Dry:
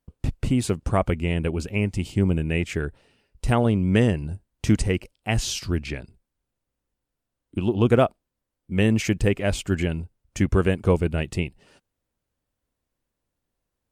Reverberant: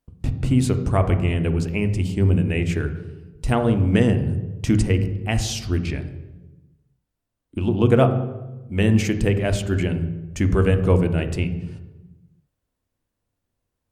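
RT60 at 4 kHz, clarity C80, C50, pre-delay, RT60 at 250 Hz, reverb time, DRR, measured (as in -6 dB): 0.80 s, 12.5 dB, 10.5 dB, 3 ms, 1.4 s, 1.1 s, 8.0 dB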